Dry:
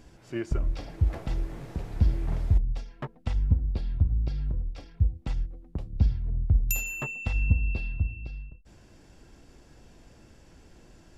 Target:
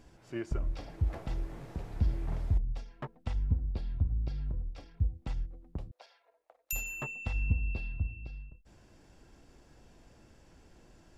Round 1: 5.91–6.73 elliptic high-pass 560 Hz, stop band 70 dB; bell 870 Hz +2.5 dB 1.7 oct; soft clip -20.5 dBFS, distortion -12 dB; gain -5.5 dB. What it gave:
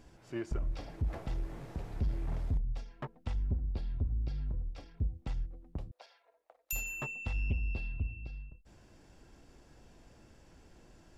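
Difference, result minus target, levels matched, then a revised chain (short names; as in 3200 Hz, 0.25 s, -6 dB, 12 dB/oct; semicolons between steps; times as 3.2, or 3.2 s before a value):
soft clip: distortion +15 dB
5.91–6.73 elliptic high-pass 560 Hz, stop band 70 dB; bell 870 Hz +2.5 dB 1.7 oct; soft clip -10 dBFS, distortion -27 dB; gain -5.5 dB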